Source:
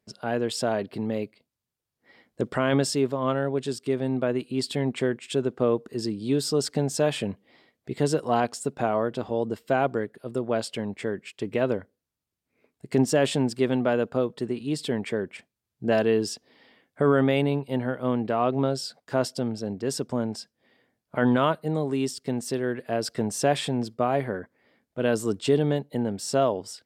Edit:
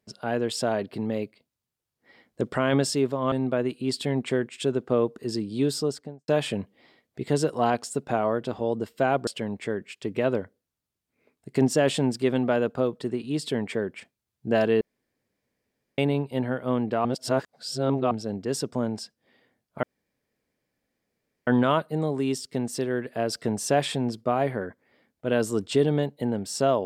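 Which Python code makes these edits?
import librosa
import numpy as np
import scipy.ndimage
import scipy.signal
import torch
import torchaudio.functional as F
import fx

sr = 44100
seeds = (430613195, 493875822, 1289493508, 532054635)

y = fx.studio_fade_out(x, sr, start_s=6.37, length_s=0.61)
y = fx.edit(y, sr, fx.cut(start_s=3.32, length_s=0.7),
    fx.cut(start_s=9.97, length_s=0.67),
    fx.room_tone_fill(start_s=16.18, length_s=1.17),
    fx.reverse_span(start_s=18.42, length_s=1.06),
    fx.insert_room_tone(at_s=21.2, length_s=1.64), tone=tone)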